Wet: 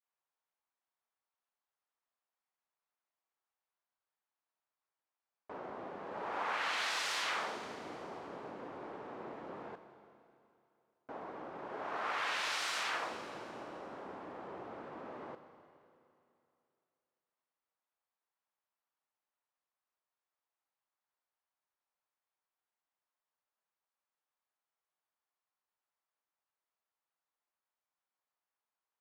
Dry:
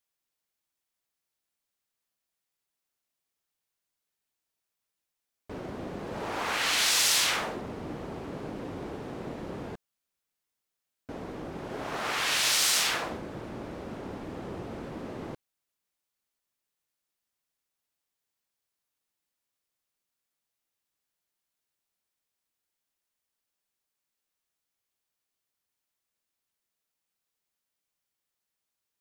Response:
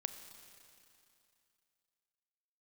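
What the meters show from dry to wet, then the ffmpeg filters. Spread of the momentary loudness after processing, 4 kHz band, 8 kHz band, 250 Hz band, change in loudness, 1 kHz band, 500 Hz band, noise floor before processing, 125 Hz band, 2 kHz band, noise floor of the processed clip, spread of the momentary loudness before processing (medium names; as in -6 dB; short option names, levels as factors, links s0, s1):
14 LU, -13.0 dB, -19.0 dB, -12.0 dB, -11.0 dB, -3.5 dB, -6.5 dB, under -85 dBFS, -17.5 dB, -7.0 dB, under -85 dBFS, 19 LU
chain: -filter_complex "[0:a]adynamicequalizer=threshold=0.00501:dfrequency=870:dqfactor=1:tfrequency=870:tqfactor=1:attack=5:release=100:ratio=0.375:range=3:mode=cutabove:tftype=bell,bandpass=f=960:t=q:w=1.4:csg=0[s0];[1:a]atrim=start_sample=2205[s1];[s0][s1]afir=irnorm=-1:irlink=0,volume=1.41"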